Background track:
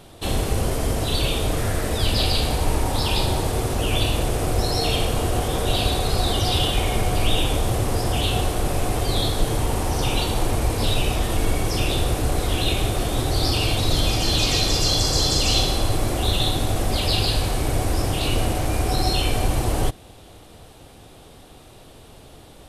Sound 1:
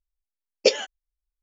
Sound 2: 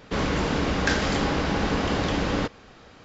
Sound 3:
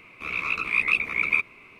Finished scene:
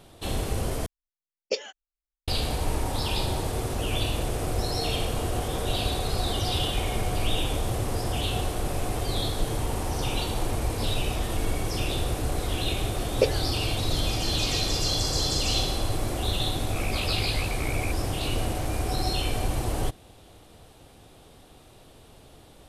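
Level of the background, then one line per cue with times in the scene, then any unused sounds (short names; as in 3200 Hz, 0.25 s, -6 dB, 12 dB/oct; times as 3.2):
background track -6 dB
0.86 replace with 1 -10 dB
12.56 add 1 -2.5 dB + LPF 1500 Hz 6 dB/oct
16.51 add 3 -5.5 dB + compressor, threshold -27 dBFS
not used: 2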